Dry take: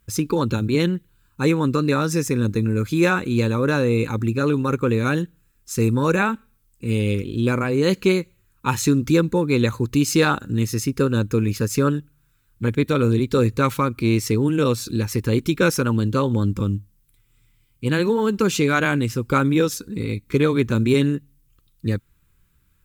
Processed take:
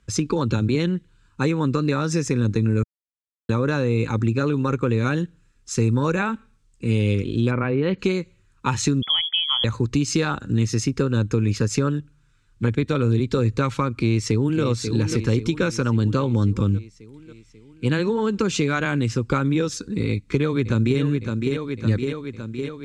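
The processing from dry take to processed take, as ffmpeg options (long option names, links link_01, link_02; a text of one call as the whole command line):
ffmpeg -i in.wav -filter_complex "[0:a]asplit=3[link_01][link_02][link_03];[link_01]afade=type=out:start_time=7.5:duration=0.02[link_04];[link_02]lowpass=frequency=3100:width=0.5412,lowpass=frequency=3100:width=1.3066,afade=type=in:start_time=7.5:duration=0.02,afade=type=out:start_time=7.98:duration=0.02[link_05];[link_03]afade=type=in:start_time=7.98:duration=0.02[link_06];[link_04][link_05][link_06]amix=inputs=3:normalize=0,asettb=1/sr,asplit=3[link_07][link_08][link_09];[link_07]atrim=end=9.024[link_10];[link_08]atrim=start=9.02:end=9.64,asetpts=PTS-STARTPTS,afade=type=in:duration=0.004:curve=qsin,afade=type=out:start_time=0.616:duration=0.004:curve=qsin,lowpass=frequency=3000:width_type=q:width=0.5098,lowpass=frequency=3000:width_type=q:width=0.6013,lowpass=frequency=3000:width_type=q:width=0.9,lowpass=frequency=3000:width_type=q:width=2.563,afreqshift=-3500[link_11];[link_09]atrim=start=9.636[link_12];[link_10][link_11]acrossfade=duration=0.004:curve1=hsin:curve2=qsin[link_13];[link_13][link_12]acrossfade=duration=0.004:curve1=qsin:curve2=hsin,asplit=2[link_14][link_15];[link_15]afade=type=in:start_time=13.92:duration=0.01,afade=type=out:start_time=14.62:duration=0.01,aecho=0:1:540|1080|1620|2160|2700|3240|3780:0.316228|0.189737|0.113842|0.0683052|0.0409831|0.0245899|0.0147539[link_16];[link_14][link_16]amix=inputs=2:normalize=0,asplit=2[link_17][link_18];[link_18]afade=type=in:start_time=20.09:duration=0.01,afade=type=out:start_time=21:duration=0.01,aecho=0:1:560|1120|1680|2240|2800|3360|3920|4480|5040:0.375837|0.244294|0.158791|0.103214|0.0670893|0.0436081|0.0283452|0.0184244|0.0119759[link_19];[link_17][link_19]amix=inputs=2:normalize=0,asplit=3[link_20][link_21][link_22];[link_20]atrim=end=2.83,asetpts=PTS-STARTPTS,afade=type=out:start_time=2.826:duration=0.004:curve=hsin[link_23];[link_21]atrim=start=2.83:end=3.49,asetpts=PTS-STARTPTS,volume=0[link_24];[link_22]atrim=start=3.49,asetpts=PTS-STARTPTS,afade=type=in:duration=0.004:curve=hsin[link_25];[link_23][link_24][link_25]concat=n=3:v=0:a=1,lowpass=frequency=7700:width=0.5412,lowpass=frequency=7700:width=1.3066,acrossover=split=120[link_26][link_27];[link_27]acompressor=threshold=-22dB:ratio=6[link_28];[link_26][link_28]amix=inputs=2:normalize=0,volume=3dB" out.wav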